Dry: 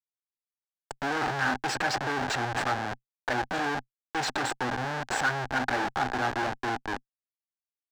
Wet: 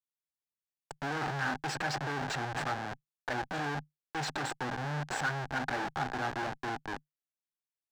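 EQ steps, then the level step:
parametric band 150 Hz +11.5 dB 0.25 octaves
−6.0 dB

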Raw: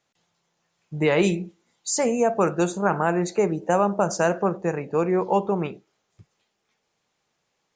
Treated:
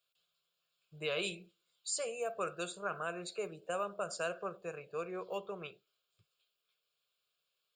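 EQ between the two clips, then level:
first-order pre-emphasis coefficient 0.9
parametric band 60 Hz −12.5 dB 0.92 octaves
phaser with its sweep stopped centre 1,300 Hz, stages 8
+3.0 dB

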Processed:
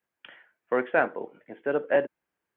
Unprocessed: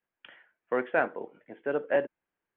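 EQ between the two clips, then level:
high-pass filter 47 Hz
+3.0 dB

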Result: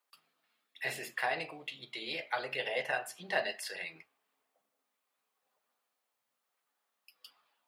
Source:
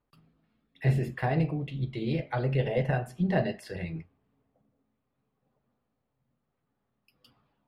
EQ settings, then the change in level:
high-pass filter 790 Hz 12 dB per octave
high-shelf EQ 2,600 Hz +10 dB
0.0 dB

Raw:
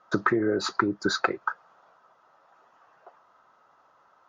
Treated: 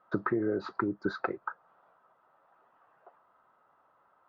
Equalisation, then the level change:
high-frequency loss of the air 380 metres
dynamic equaliser 2,600 Hz, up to −5 dB, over −44 dBFS, Q 0.79
−4.0 dB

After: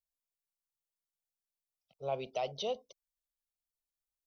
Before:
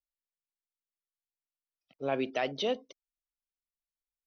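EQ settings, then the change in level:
low-shelf EQ 260 Hz +4.5 dB
high-shelf EQ 5,300 Hz +5 dB
phaser with its sweep stopped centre 710 Hz, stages 4
−3.0 dB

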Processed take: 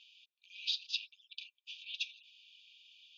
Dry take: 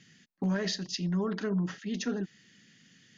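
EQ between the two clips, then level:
linear-phase brick-wall high-pass 2,300 Hz
high-frequency loss of the air 370 metres
parametric band 3,600 Hz +7.5 dB 0.22 octaves
+10.5 dB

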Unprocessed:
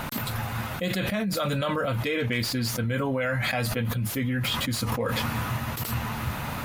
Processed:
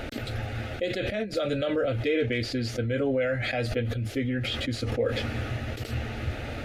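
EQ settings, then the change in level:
head-to-tape spacing loss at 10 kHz 21 dB
phaser with its sweep stopped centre 420 Hz, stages 4
+5.0 dB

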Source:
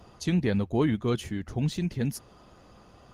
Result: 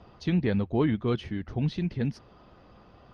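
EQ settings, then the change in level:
Savitzky-Golay smoothing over 15 samples
high-frequency loss of the air 82 metres
0.0 dB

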